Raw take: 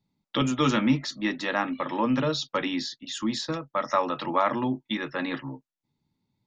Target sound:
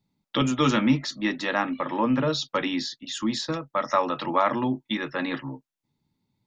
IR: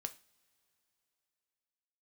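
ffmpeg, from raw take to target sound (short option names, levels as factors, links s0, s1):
-filter_complex "[0:a]asettb=1/sr,asplit=3[s0][s1][s2];[s0]atrim=end=1.654[s3];[s1]atrim=start=1.65:end=2.28,asetpts=PTS-STARTPTS,afade=t=in:d=0.004:c=qsin,afade=t=out:st=0.626:d=0.004:c=qsin,acrossover=split=2700[s4][s5];[s5]acompressor=threshold=0.002:ratio=4:attack=1:release=60[s6];[s4][s6]amix=inputs=2:normalize=0[s7];[s2]atrim=start=2.276[s8];[s3][s7]acrossfade=d=0.004:c1=hsin:c2=qsin[s9];[s9][s8]acrossfade=d=0.004:c1=qsin:c2=hsin,volume=1.19"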